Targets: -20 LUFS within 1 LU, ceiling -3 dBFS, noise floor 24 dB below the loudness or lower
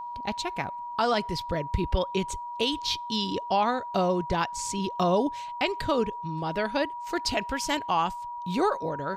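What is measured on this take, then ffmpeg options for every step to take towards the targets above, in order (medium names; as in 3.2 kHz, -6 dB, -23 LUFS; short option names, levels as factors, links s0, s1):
steady tone 960 Hz; tone level -34 dBFS; loudness -28.5 LUFS; peak level -14.0 dBFS; loudness target -20.0 LUFS
-> -af "bandreject=f=960:w=30"
-af "volume=2.66"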